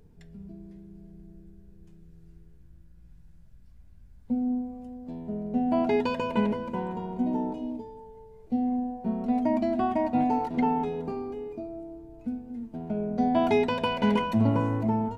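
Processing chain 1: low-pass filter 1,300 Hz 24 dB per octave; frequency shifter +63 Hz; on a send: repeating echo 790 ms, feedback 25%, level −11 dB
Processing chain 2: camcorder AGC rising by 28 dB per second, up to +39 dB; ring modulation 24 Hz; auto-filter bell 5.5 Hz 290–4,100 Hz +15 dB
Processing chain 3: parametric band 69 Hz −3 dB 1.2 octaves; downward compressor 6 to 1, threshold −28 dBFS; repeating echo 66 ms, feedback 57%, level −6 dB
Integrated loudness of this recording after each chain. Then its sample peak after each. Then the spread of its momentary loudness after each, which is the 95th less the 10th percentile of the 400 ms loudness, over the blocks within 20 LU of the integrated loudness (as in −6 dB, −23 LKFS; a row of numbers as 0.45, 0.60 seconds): −28.0, −25.5, −34.0 LKFS; −11.0, −7.0, −17.5 dBFS; 17, 12, 16 LU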